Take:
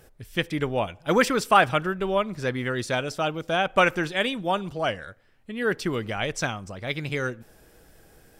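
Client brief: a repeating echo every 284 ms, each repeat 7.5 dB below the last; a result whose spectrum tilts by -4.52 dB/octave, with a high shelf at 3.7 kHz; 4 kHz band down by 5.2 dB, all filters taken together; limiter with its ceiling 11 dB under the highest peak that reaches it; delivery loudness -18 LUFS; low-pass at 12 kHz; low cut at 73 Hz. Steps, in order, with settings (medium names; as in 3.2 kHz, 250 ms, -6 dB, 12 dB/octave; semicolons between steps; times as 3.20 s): high-pass 73 Hz; low-pass 12 kHz; treble shelf 3.7 kHz -5.5 dB; peaking EQ 4 kHz -4 dB; peak limiter -16.5 dBFS; feedback delay 284 ms, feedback 42%, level -7.5 dB; trim +10.5 dB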